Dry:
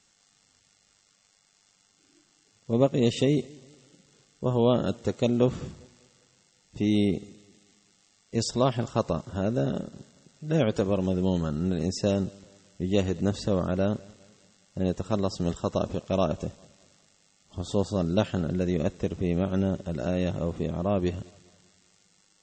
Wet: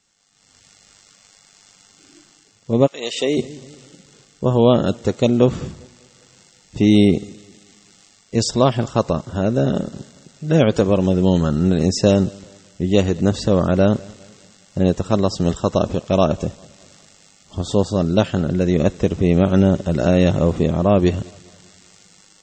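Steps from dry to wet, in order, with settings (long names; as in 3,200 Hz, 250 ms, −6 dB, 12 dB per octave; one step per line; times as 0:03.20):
0:02.86–0:03.37: high-pass filter 1,300 Hz → 340 Hz 12 dB per octave
automatic gain control gain up to 15 dB
level −1 dB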